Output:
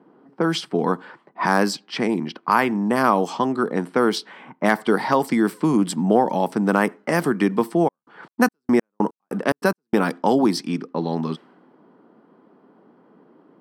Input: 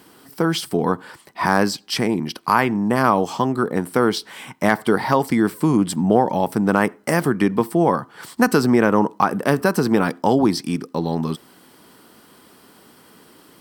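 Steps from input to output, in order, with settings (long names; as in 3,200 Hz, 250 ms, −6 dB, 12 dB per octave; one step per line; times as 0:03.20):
low-pass that shuts in the quiet parts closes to 800 Hz, open at −14 dBFS
high-pass filter 160 Hz 24 dB per octave
0:07.87–0:09.93: gate pattern "x..x..xx.x.." 145 BPM −60 dB
level −1 dB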